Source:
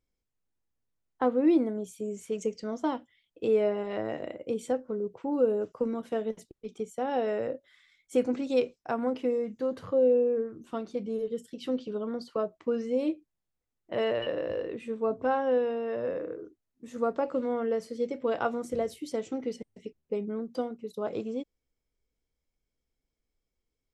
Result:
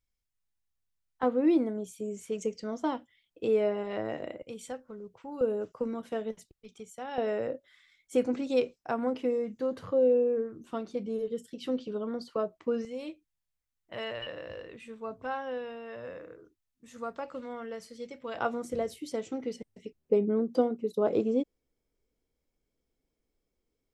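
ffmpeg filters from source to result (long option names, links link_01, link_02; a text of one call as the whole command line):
ffmpeg -i in.wav -af "asetnsamples=nb_out_samples=441:pad=0,asendcmd='1.23 equalizer g -1.5;4.42 equalizer g -13;5.41 equalizer g -3.5;6.37 equalizer g -12.5;7.18 equalizer g -1;12.85 equalizer g -12.5;18.36 equalizer g -2;20.01 equalizer g 7.5',equalizer=frequency=360:width_type=o:width=2.4:gain=-12.5" out.wav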